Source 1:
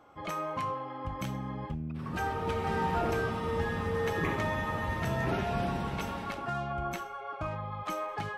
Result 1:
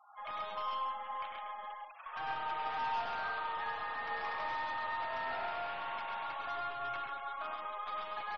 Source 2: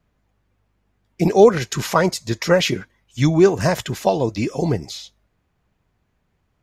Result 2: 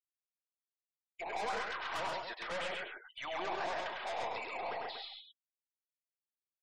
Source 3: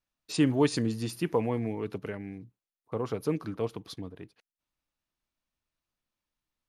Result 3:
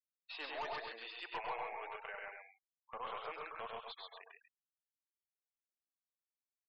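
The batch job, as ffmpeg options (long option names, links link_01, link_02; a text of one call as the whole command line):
ffmpeg -i in.wav -filter_complex "[0:a]asuperpass=centerf=1600:order=8:qfactor=0.54,acrossover=split=1400[link_01][link_02];[link_02]acompressor=threshold=-44dB:ratio=10[link_03];[link_01][link_03]amix=inputs=2:normalize=0,aeval=exprs='(tanh(79.4*val(0)+0.15)-tanh(0.15))/79.4':channel_layout=same,aecho=1:1:99.13|134.1|239.1:0.631|0.708|0.398,afftfilt=real='re*gte(hypot(re,im),0.00224)':imag='im*gte(hypot(re,im),0.00224)':win_size=1024:overlap=0.75" out.wav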